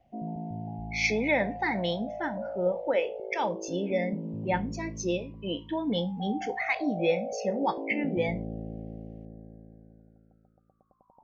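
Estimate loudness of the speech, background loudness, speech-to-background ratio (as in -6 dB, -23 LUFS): -30.5 LUFS, -38.5 LUFS, 8.0 dB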